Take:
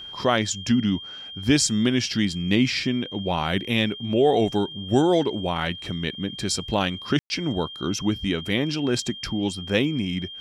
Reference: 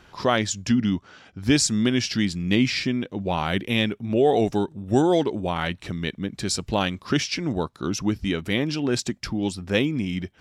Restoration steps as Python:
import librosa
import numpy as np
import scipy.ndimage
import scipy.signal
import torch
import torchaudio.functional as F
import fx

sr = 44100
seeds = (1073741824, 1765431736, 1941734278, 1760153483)

y = fx.notch(x, sr, hz=3200.0, q=30.0)
y = fx.fix_ambience(y, sr, seeds[0], print_start_s=0.97, print_end_s=1.47, start_s=7.19, end_s=7.3)